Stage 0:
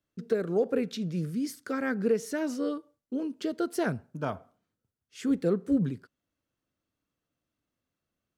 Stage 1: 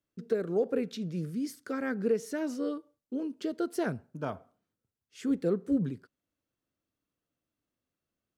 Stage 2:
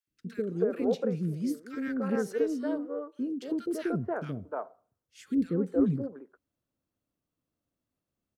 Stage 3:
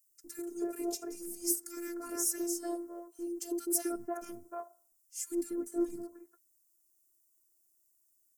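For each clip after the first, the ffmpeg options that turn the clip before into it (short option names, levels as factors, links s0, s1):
-af "equalizer=f=380:t=o:w=1.5:g=2.5,volume=0.631"
-filter_complex "[0:a]asplit=2[s0][s1];[s1]adynamicsmooth=sensitivity=3:basefreq=2000,volume=0.944[s2];[s0][s2]amix=inputs=2:normalize=0,acrossover=split=400|1600[s3][s4][s5];[s3]adelay=70[s6];[s4]adelay=300[s7];[s6][s7][s5]amix=inputs=3:normalize=0,volume=0.794"
-af "afftfilt=real='hypot(re,im)*cos(PI*b)':imag='0':win_size=512:overlap=0.75,aexciter=amount=12:drive=9:freq=5700,volume=0.668"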